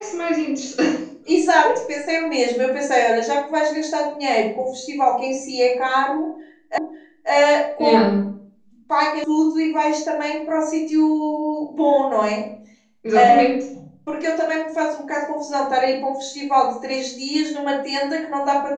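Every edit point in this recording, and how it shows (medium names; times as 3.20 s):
6.78 s: repeat of the last 0.54 s
9.24 s: sound stops dead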